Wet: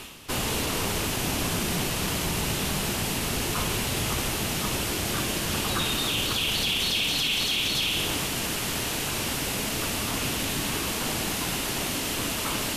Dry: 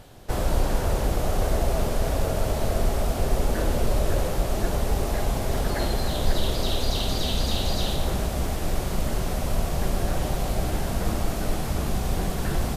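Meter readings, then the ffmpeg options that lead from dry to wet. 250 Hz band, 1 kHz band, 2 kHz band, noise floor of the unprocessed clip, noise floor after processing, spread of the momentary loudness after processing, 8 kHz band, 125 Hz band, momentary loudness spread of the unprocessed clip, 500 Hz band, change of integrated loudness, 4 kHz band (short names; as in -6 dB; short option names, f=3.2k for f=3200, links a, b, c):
-1.0 dB, -1.5 dB, +7.0 dB, -29 dBFS, -30 dBFS, 4 LU, +8.0 dB, -6.0 dB, 3 LU, -5.5 dB, +1.0 dB, +7.5 dB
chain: -af "highpass=f=1.5k:p=1,equalizer=f=3.3k:w=3.5:g=5,alimiter=level_in=1.5dB:limit=-24dB:level=0:latency=1:release=13,volume=-1.5dB,areverse,acompressor=mode=upward:threshold=-39dB:ratio=2.5,areverse,afreqshift=-480,volume=8.5dB"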